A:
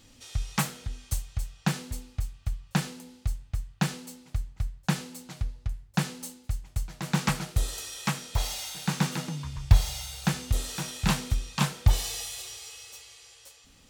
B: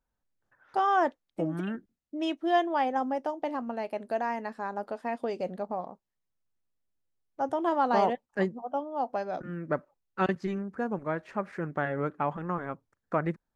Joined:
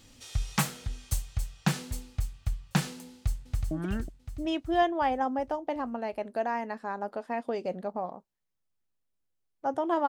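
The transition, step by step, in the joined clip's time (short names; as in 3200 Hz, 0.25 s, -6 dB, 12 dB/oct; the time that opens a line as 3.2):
A
3.08–3.71 echo throw 0.37 s, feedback 55%, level -5 dB
3.71 switch to B from 1.46 s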